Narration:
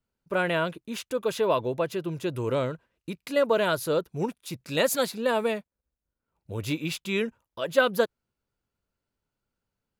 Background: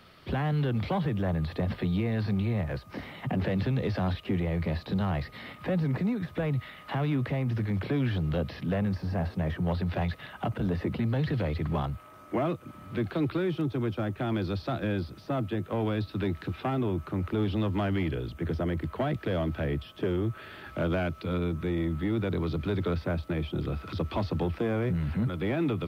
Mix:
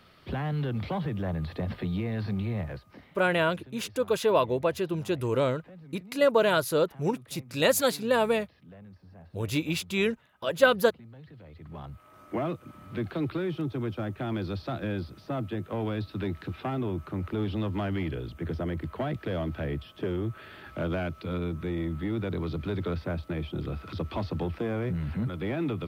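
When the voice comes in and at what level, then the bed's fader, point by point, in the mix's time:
2.85 s, +1.0 dB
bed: 0:02.64 −2.5 dB
0:03.31 −21 dB
0:11.42 −21 dB
0:12.20 −2 dB

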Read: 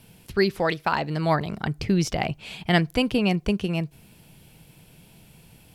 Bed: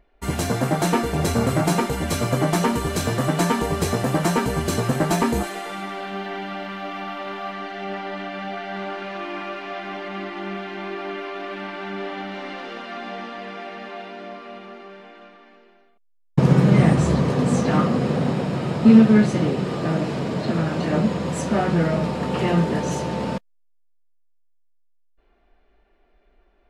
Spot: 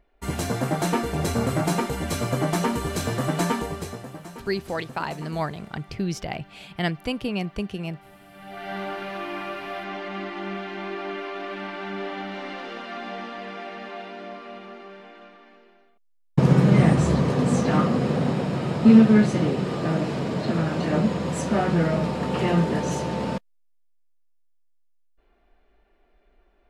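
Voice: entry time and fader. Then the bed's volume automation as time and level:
4.10 s, −5.5 dB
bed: 0:03.53 −3.5 dB
0:04.23 −20 dB
0:08.27 −20 dB
0:08.69 −1.5 dB

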